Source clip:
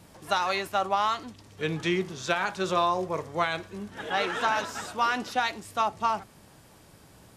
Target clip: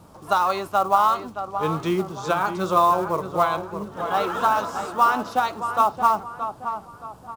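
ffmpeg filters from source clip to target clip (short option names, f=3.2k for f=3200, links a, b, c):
-filter_complex "[0:a]highshelf=f=1.5k:t=q:w=3:g=-6,acrusher=bits=6:mode=log:mix=0:aa=0.000001,asplit=2[a][b];[b]adelay=623,lowpass=f=2.5k:p=1,volume=-9dB,asplit=2[c][d];[d]adelay=623,lowpass=f=2.5k:p=1,volume=0.39,asplit=2[e][f];[f]adelay=623,lowpass=f=2.5k:p=1,volume=0.39,asplit=2[g][h];[h]adelay=623,lowpass=f=2.5k:p=1,volume=0.39[i];[a][c][e][g][i]amix=inputs=5:normalize=0,volume=4dB"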